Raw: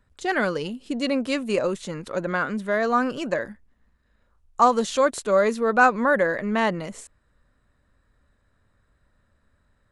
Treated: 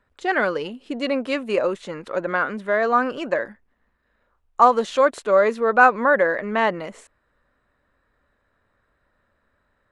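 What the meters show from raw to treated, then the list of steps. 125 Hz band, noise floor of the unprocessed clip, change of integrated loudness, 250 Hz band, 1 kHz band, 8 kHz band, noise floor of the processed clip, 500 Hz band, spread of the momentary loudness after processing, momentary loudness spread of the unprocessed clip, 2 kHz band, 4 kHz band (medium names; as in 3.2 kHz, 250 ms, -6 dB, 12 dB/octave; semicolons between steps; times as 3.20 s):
-4.5 dB, -67 dBFS, +2.5 dB, -2.0 dB, +3.5 dB, no reading, -70 dBFS, +3.0 dB, 14 LU, 12 LU, +3.0 dB, -1.0 dB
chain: tone controls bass -11 dB, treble -12 dB; trim +3.5 dB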